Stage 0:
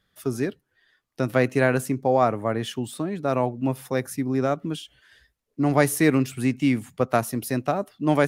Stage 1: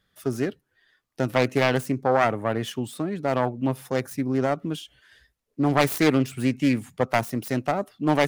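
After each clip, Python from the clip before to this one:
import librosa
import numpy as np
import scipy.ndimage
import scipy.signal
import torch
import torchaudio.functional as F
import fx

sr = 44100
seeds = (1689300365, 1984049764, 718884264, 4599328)

y = fx.self_delay(x, sr, depth_ms=0.38)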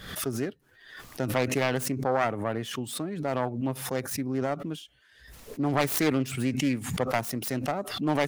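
y = fx.pre_swell(x, sr, db_per_s=70.0)
y = F.gain(torch.from_numpy(y), -5.5).numpy()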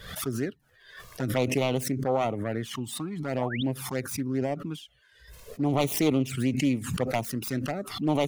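y = fx.spec_paint(x, sr, seeds[0], shape='rise', start_s=3.37, length_s=0.26, low_hz=480.0, high_hz=3900.0, level_db=-35.0)
y = fx.env_flanger(y, sr, rest_ms=2.2, full_db=-22.5)
y = F.gain(torch.from_numpy(y), 2.0).numpy()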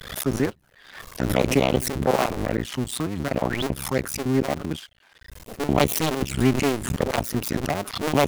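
y = fx.cycle_switch(x, sr, every=2, mode='muted')
y = F.gain(torch.from_numpy(y), 8.0).numpy()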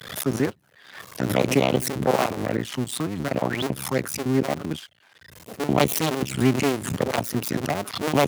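y = scipy.signal.sosfilt(scipy.signal.butter(4, 93.0, 'highpass', fs=sr, output='sos'), x)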